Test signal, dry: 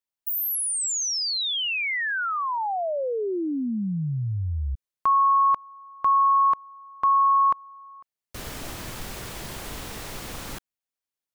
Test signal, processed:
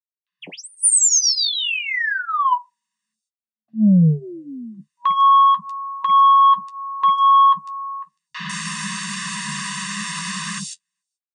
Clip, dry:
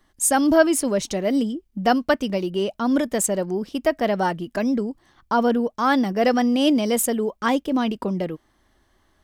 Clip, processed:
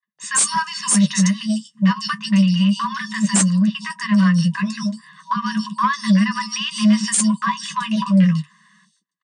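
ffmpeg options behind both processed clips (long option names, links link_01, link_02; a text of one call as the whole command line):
ffmpeg -i in.wav -filter_complex "[0:a]afftfilt=real='re*(1-between(b*sr/4096,220,960))':imag='im*(1-between(b*sr/4096,220,960))':win_size=4096:overlap=0.75,aecho=1:1:1.1:0.98,agate=range=-40dB:threshold=-52dB:ratio=16:release=314:detection=rms,acrossover=split=600|4000[link_01][link_02][link_03];[link_01]adelay=50[link_04];[link_03]adelay=150[link_05];[link_04][link_02][link_05]amix=inputs=3:normalize=0,acrossover=split=390|890|5400[link_06][link_07][link_08][link_09];[link_08]acompressor=threshold=-33dB:ratio=8:attack=0.25:release=272:knee=1:detection=peak[link_10];[link_06][link_07][link_10][link_09]amix=inputs=4:normalize=0,aeval=exprs='0.501*sin(PI/2*3.55*val(0)/0.501)':channel_layout=same,flanger=delay=8.9:depth=3.2:regen=-37:speed=0.31:shape=triangular,afftfilt=real='re*between(b*sr/4096,140,9700)':imag='im*between(b*sr/4096,140,9700)':win_size=4096:overlap=0.75" out.wav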